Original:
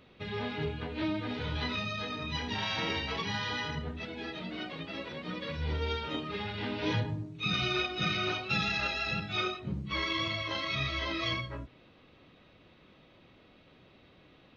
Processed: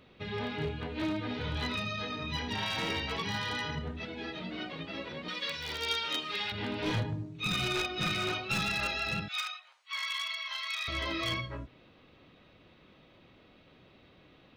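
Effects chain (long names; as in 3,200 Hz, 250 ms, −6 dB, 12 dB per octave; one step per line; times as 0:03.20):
wavefolder on the positive side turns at −26.5 dBFS
0:05.28–0:06.52: spectral tilt +4.5 dB per octave
0:09.28–0:10.88: Bessel high-pass filter 1,400 Hz, order 8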